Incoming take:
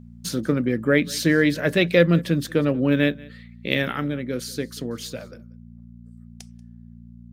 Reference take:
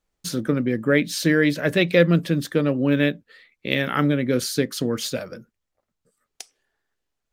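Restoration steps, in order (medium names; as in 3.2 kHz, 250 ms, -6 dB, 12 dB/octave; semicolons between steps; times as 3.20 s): de-hum 58.4 Hz, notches 4; inverse comb 186 ms -23.5 dB; gain correction +6.5 dB, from 3.92 s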